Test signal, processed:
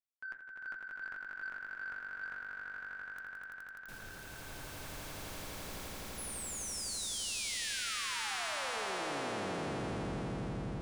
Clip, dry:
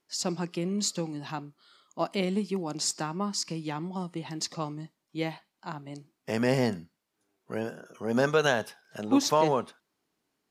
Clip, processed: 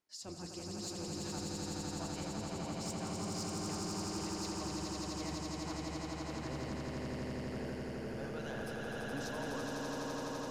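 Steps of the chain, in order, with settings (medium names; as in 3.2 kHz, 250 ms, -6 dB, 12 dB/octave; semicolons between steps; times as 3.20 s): octave divider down 1 oct, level -5 dB; de-hum 82.34 Hz, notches 28; reverse; compression 6:1, threshold -34 dBFS; reverse; flange 1.6 Hz, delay 1 ms, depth 8.2 ms, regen -59%; echo with a slow build-up 84 ms, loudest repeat 8, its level -3.5 dB; saturation -27.5 dBFS; trim -4 dB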